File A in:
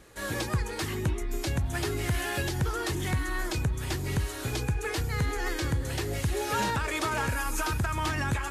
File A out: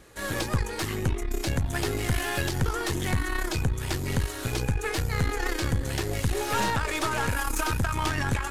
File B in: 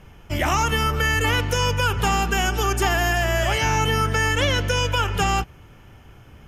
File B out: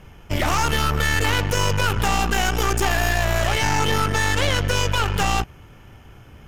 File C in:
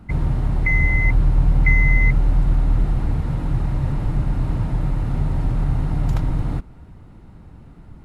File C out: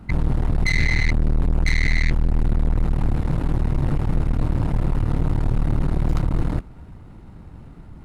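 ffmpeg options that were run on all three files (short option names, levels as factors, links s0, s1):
-af "aeval=exprs='(tanh(14.1*val(0)+0.8)-tanh(0.8))/14.1':c=same,volume=2.11"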